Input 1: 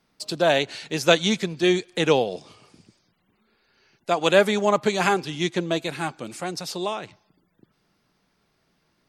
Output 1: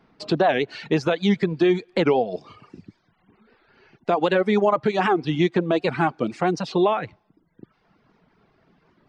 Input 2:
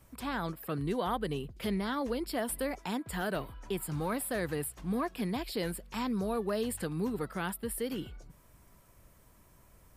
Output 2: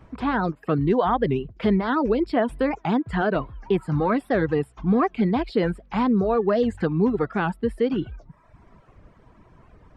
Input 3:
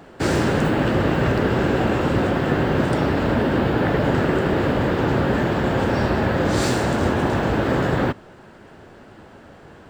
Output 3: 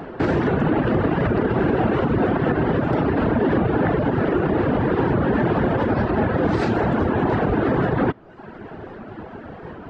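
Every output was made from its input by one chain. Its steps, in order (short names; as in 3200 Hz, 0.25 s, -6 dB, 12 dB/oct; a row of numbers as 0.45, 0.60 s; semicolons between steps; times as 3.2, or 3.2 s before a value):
compressor 3:1, threshold -25 dBFS; tape spacing loss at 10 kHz 36 dB; notch 560 Hz, Q 12; reverb removal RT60 0.87 s; limiter -23.5 dBFS; low shelf 130 Hz -6 dB; record warp 78 rpm, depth 160 cents; normalise peaks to -9 dBFS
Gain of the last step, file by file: +14.5, +16.0, +14.0 dB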